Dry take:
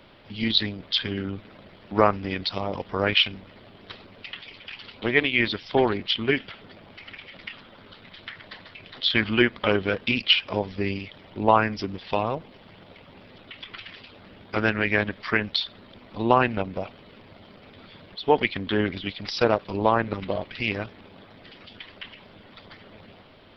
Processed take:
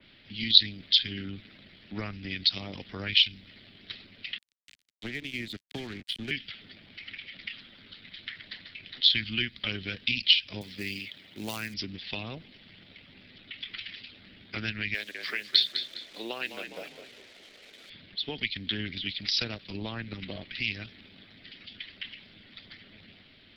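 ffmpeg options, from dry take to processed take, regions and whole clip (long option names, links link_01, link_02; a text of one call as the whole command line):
ffmpeg -i in.wav -filter_complex "[0:a]asettb=1/sr,asplit=3[link_01][link_02][link_03];[link_01]atrim=end=4.384[link_04];[link_02]atrim=start=4.38:end=6.31,asetpts=PTS-STARTPTS,afade=type=in:duration=0.004:curve=qsin,afade=type=out:start_time=1.926:duration=0.004:curve=qsin,tiltshelf=frequency=870:gain=4,aeval=exprs='sgn(val(0))*max(abs(val(0))-0.0188,0)':channel_layout=same,acrossover=split=390|920[link_05][link_06][link_07];[link_05]acompressor=threshold=-30dB:ratio=4[link_08];[link_06]acompressor=threshold=-35dB:ratio=4[link_09];[link_07]acompressor=threshold=-34dB:ratio=4[link_10];[link_08][link_09][link_10]amix=inputs=3:normalize=0[link_11];[link_03]atrim=start=6.306[link_12];[link_04][link_11]acrossfade=duration=0.004:curve1=hsin:curve2=qsin[link_13];[link_13][link_12]acrossfade=duration=0.004:curve1=qsin:curve2=hsin,asettb=1/sr,asplit=3[link_14][link_15][link_16];[link_14]atrim=end=10.614[link_17];[link_15]atrim=start=10.61:end=11.74,asetpts=PTS-STARTPTS,afade=type=in:duration=0.004:curve=qsin,afade=type=out:start_time=1.126:duration=0.004:curve=qsin,highpass=frequency=180:poles=1,acrusher=bits=5:mode=log:mix=0:aa=0.000001[link_18];[link_16]atrim=start=11.736[link_19];[link_17][link_18]acrossfade=duration=0.004:curve1=hsin:curve2=qsin[link_20];[link_20][link_19]acrossfade=duration=0.004:curve1=qsin:curve2=hsin,asettb=1/sr,asplit=3[link_21][link_22][link_23];[link_21]atrim=end=14.944[link_24];[link_22]atrim=start=14.94:end=17.9,asetpts=PTS-STARTPTS,afade=type=in:duration=0.004:curve=qsin,afade=type=out:start_time=2.956:duration=0.004:curve=qsin,highpass=frequency=480:width_type=q:width=1.9,acrusher=bits=7:mix=0:aa=0.5,asplit=5[link_25][link_26][link_27][link_28][link_29];[link_26]adelay=204,afreqshift=-34,volume=-11.5dB[link_30];[link_27]adelay=408,afreqshift=-68,volume=-20.6dB[link_31];[link_28]adelay=612,afreqshift=-102,volume=-29.7dB[link_32];[link_29]adelay=816,afreqshift=-136,volume=-38.9dB[link_33];[link_25][link_30][link_31][link_32][link_33]amix=inputs=5:normalize=0,atrim=end_sample=130536[link_34];[link_23]atrim=start=17.896[link_35];[link_24][link_34]acrossfade=duration=0.004:curve1=hsin:curve2=qsin[link_36];[link_36][link_35]acrossfade=duration=0.004:curve1=qsin:curve2=hsin,equalizer=frequency=250:width_type=o:width=1:gain=3,equalizer=frequency=500:width_type=o:width=1:gain=-6,equalizer=frequency=1000:width_type=o:width=1:gain=-11,equalizer=frequency=2000:width_type=o:width=1:gain=7,equalizer=frequency=4000:width_type=o:width=1:gain=8,acrossover=split=160|3000[link_37][link_38][link_39];[link_38]acompressor=threshold=-29dB:ratio=6[link_40];[link_37][link_40][link_39]amix=inputs=3:normalize=0,adynamicequalizer=threshold=0.0224:dfrequency=3100:dqfactor=0.7:tfrequency=3100:tqfactor=0.7:attack=5:release=100:ratio=0.375:range=2.5:mode=boostabove:tftype=highshelf,volume=-6.5dB" out.wav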